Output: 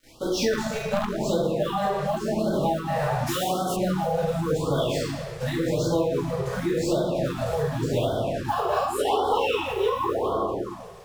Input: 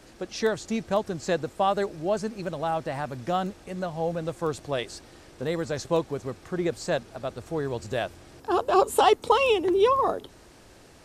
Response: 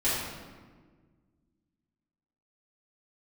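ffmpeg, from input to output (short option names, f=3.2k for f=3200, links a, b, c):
-filter_complex "[0:a]acrusher=bits=6:mix=0:aa=0.5[a];[1:a]atrim=start_sample=2205[b];[a][b]afir=irnorm=-1:irlink=0,asettb=1/sr,asplit=3[c][d][e];[c]atrim=end=0.534[f];[d]atrim=start=0.53:end=1.27,asetpts=PTS-STARTPTS,afade=t=in:d=0.004:c=qsin,afade=t=out:st=0.736:d=0.004:c=qsin,aeval=exprs='0.708*(cos(1*acos(clip(val(0)/0.708,-1,1)))-cos(1*PI/2))+0.282*(cos(4*acos(clip(val(0)/0.708,-1,1)))-cos(4*PI/2))+0.126*(cos(6*acos(clip(val(0)/0.708,-1,1)))-cos(6*PI/2))':c=same[g];[e]atrim=start=1.266[h];[f][g]acrossfade=d=0.004:c1=hsin:c2=qsin[i];[i][h]acrossfade=d=0.004:c1=qsin:c2=hsin,asplit=3[j][k][l];[j]afade=t=out:st=3.26:d=0.02[m];[k]bass=f=250:g=-9,treble=f=4k:g=13,afade=t=in:st=3.26:d=0.02,afade=t=out:st=3.75:d=0.02[n];[l]afade=t=in:st=3.75:d=0.02[o];[m][n][o]amix=inputs=3:normalize=0,acompressor=threshold=-21dB:ratio=5,afftfilt=real='re*(1-between(b*sr/1024,260*pow(2200/260,0.5+0.5*sin(2*PI*0.89*pts/sr))/1.41,260*pow(2200/260,0.5+0.5*sin(2*PI*0.89*pts/sr))*1.41))':imag='im*(1-between(b*sr/1024,260*pow(2200/260,0.5+0.5*sin(2*PI*0.89*pts/sr))/1.41,260*pow(2200/260,0.5+0.5*sin(2*PI*0.89*pts/sr))*1.41))':win_size=1024:overlap=0.75"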